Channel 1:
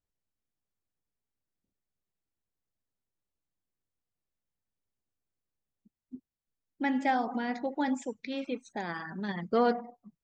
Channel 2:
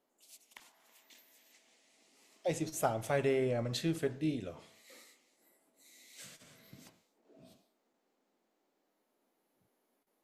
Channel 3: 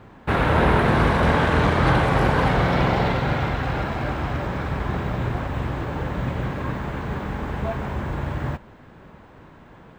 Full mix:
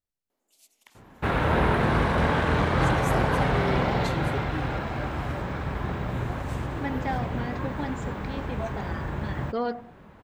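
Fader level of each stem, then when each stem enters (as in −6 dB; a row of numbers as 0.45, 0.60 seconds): −3.0, −1.5, −4.5 decibels; 0.00, 0.30, 0.95 seconds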